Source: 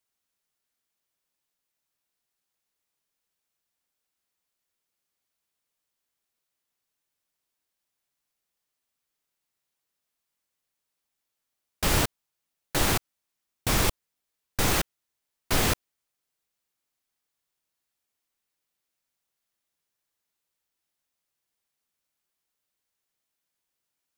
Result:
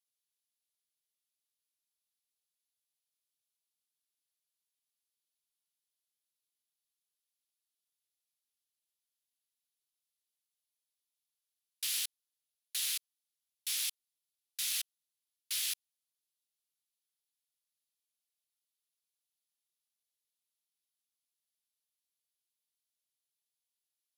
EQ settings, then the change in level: ladder high-pass 2700 Hz, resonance 30%; tilt -1.5 dB/oct; bell 11000 Hz +10.5 dB 0.36 oct; +1.5 dB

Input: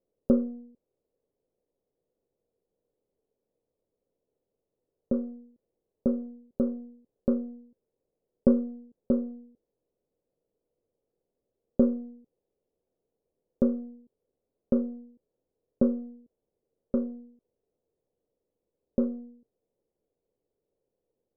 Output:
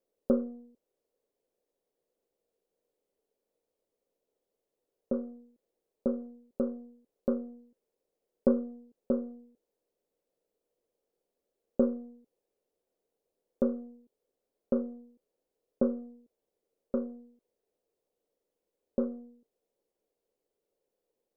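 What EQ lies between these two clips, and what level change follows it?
bell 120 Hz -6 dB 0.77 oct; low shelf 320 Hz -11 dB; +2.5 dB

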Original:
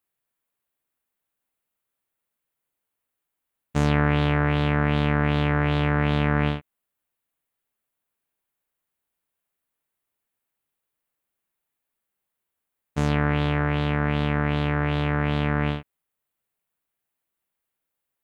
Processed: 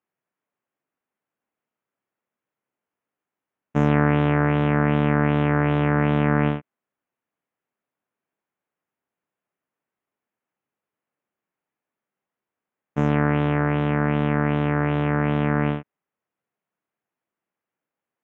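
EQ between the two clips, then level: running mean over 10 samples; HPF 180 Hz 12 dB/oct; low shelf 260 Hz +6 dB; +2.5 dB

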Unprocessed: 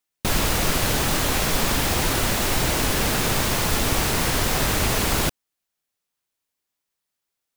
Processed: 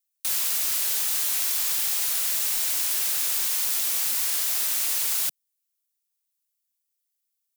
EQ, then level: HPF 160 Hz 24 dB/oct; differentiator; 0.0 dB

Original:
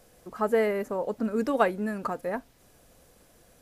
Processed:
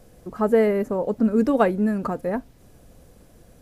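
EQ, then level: low shelf 450 Hz +12 dB; 0.0 dB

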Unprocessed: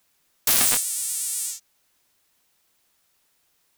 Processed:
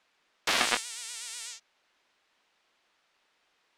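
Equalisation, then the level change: LPF 3300 Hz 12 dB/oct; bell 110 Hz -6.5 dB 1.3 oct; low shelf 210 Hz -12 dB; +3.0 dB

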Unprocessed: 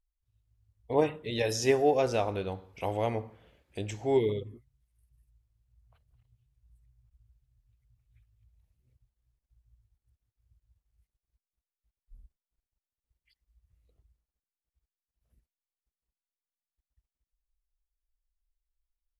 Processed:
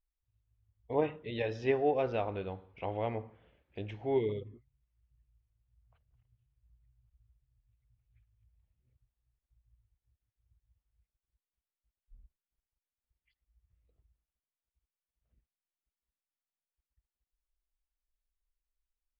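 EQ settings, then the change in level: LPF 3300 Hz 24 dB/oct; -4.5 dB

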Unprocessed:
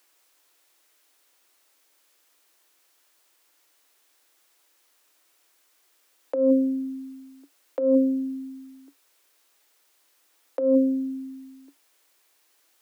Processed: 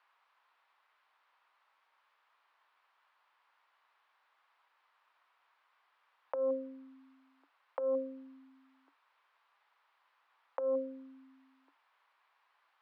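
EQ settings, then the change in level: band-pass 1000 Hz, Q 2.5; air absorption 400 m; tilt +5.5 dB/oct; +7.0 dB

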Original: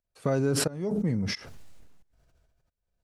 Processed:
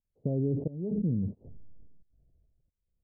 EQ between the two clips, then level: Gaussian blur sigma 19 samples; 0.0 dB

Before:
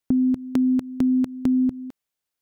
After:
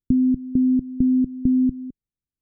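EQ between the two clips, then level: Gaussian blur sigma 24 samples; tilt -2.5 dB/oct; 0.0 dB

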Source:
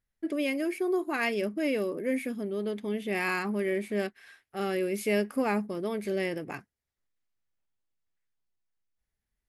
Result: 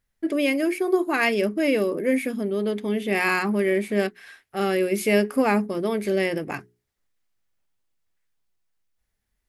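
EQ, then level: notches 60/120/180/240/300/360/420 Hz; +7.5 dB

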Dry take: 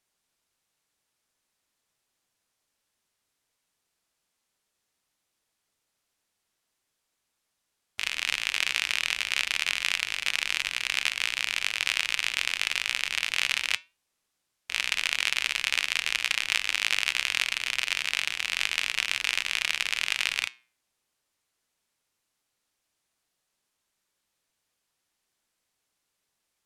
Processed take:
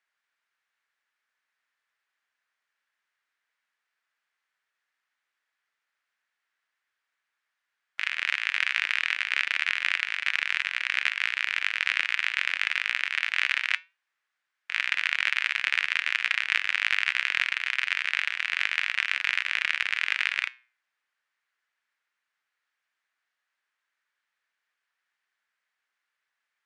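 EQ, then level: band-pass 1700 Hz, Q 2.5; +7.5 dB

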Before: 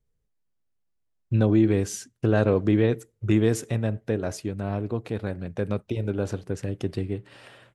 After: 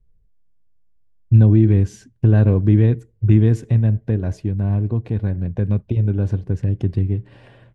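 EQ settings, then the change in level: RIAA curve playback; dynamic EQ 540 Hz, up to -6 dB, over -29 dBFS, Q 0.9; Butterworth band-stop 1300 Hz, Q 7; 0.0 dB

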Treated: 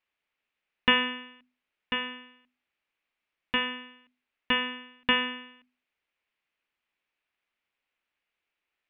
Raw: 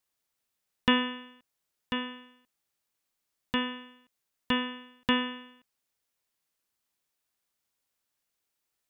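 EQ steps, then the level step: synth low-pass 2500 Hz, resonance Q 2.5; bell 120 Hz -6 dB 0.87 oct; notches 50/100/150/200/250 Hz; 0.0 dB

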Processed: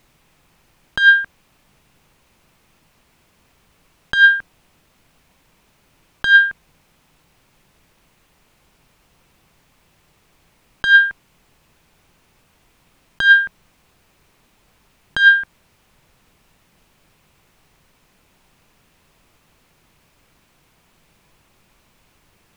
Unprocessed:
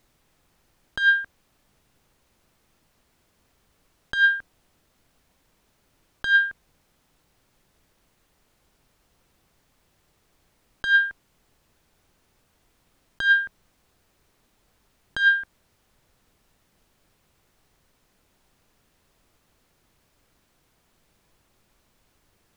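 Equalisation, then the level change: fifteen-band EQ 160 Hz +4 dB, 1000 Hz +3 dB, 2500 Hz +5 dB; +6.5 dB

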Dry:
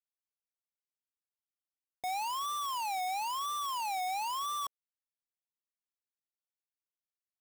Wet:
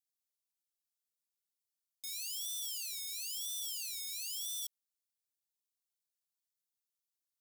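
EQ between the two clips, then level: inverse Chebyshev high-pass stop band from 1000 Hz, stop band 60 dB; high shelf 4700 Hz +6 dB; 0.0 dB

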